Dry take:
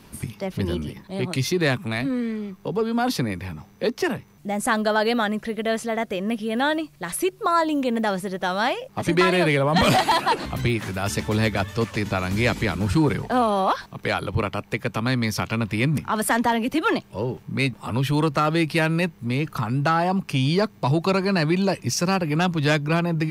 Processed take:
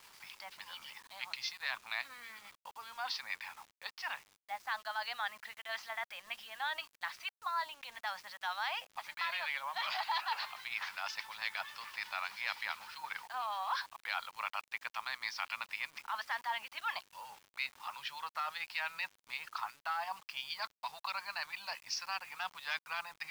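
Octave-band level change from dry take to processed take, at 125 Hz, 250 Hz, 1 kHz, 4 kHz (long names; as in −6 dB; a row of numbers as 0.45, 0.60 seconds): below −40 dB, below −40 dB, −14.5 dB, −11.0 dB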